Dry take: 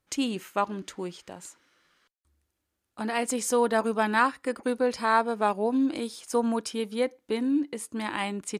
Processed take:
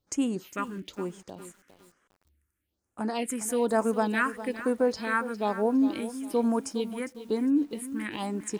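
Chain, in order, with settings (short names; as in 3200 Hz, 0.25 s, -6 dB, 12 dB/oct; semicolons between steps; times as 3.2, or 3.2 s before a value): phaser stages 4, 1.1 Hz, lowest notch 640–4200 Hz; lo-fi delay 0.406 s, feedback 35%, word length 8-bit, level -13 dB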